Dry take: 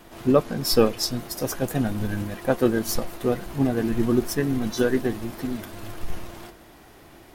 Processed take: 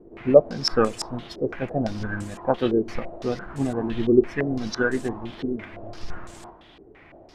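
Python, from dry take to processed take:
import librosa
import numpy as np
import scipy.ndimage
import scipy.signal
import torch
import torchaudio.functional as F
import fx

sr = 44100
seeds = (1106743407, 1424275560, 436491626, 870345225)

y = fx.filter_held_lowpass(x, sr, hz=5.9, low_hz=410.0, high_hz=7900.0)
y = F.gain(torch.from_numpy(y), -3.5).numpy()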